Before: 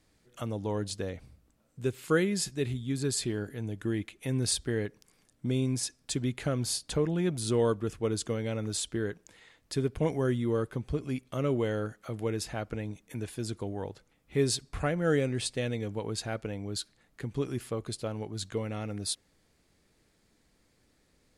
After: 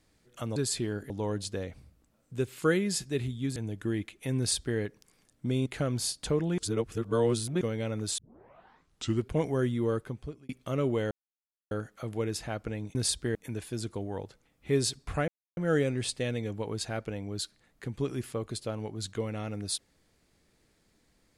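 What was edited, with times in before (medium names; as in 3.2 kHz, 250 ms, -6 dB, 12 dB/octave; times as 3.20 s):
3.02–3.56 s: move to 0.56 s
4.38–4.78 s: copy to 13.01 s
5.66–6.32 s: delete
7.24–8.27 s: reverse
8.84 s: tape start 1.13 s
10.62–11.15 s: fade out
11.77 s: insert silence 0.60 s
14.94 s: insert silence 0.29 s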